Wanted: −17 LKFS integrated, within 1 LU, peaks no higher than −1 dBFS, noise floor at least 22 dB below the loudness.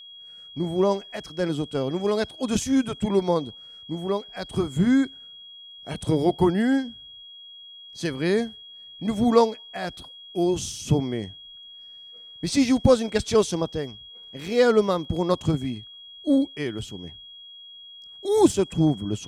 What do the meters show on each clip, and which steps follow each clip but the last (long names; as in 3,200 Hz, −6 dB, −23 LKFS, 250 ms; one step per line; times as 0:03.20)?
interfering tone 3,300 Hz; level of the tone −42 dBFS; integrated loudness −24.0 LKFS; sample peak −3.5 dBFS; target loudness −17.0 LKFS
→ notch filter 3,300 Hz, Q 30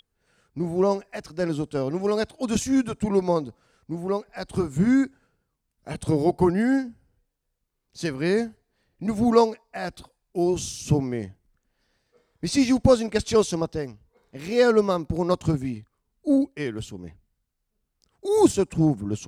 interfering tone none found; integrated loudness −24.0 LKFS; sample peak −3.5 dBFS; target loudness −17.0 LKFS
→ level +7 dB
brickwall limiter −1 dBFS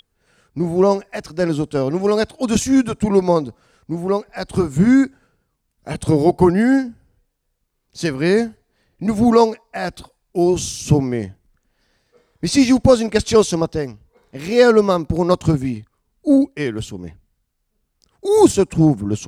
integrated loudness −17.5 LKFS; sample peak −1.0 dBFS; background noise floor −71 dBFS